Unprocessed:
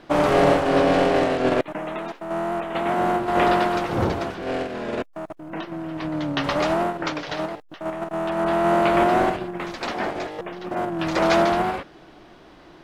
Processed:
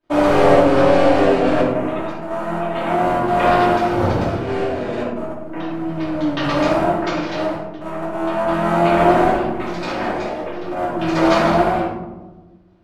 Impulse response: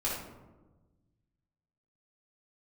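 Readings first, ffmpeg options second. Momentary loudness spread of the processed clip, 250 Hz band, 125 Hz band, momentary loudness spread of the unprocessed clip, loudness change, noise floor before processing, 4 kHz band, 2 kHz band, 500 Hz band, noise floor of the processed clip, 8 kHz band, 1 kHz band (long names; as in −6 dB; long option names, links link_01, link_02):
12 LU, +5.5 dB, +6.0 dB, 14 LU, +4.5 dB, −49 dBFS, +2.0 dB, +3.0 dB, +5.0 dB, −39 dBFS, can't be measured, +4.5 dB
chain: -filter_complex "[0:a]agate=range=-33dB:threshold=-34dB:ratio=3:detection=peak[link_01];[1:a]atrim=start_sample=2205[link_02];[link_01][link_02]afir=irnorm=-1:irlink=0,volume=-2.5dB"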